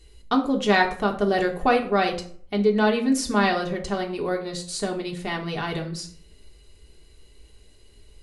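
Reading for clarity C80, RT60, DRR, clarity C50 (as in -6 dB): 15.0 dB, 0.50 s, 0.0 dB, 11.0 dB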